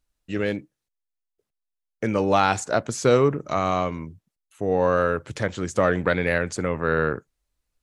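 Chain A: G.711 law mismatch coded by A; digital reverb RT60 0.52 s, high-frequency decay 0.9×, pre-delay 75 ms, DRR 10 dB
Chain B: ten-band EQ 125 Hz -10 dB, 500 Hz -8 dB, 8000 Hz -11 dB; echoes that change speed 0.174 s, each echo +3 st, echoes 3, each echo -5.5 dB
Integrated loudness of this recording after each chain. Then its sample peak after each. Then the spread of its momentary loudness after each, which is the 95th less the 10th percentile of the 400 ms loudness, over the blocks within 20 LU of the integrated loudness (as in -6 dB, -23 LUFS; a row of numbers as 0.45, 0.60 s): -23.5, -27.0 LUFS; -4.5, -7.0 dBFS; 13, 9 LU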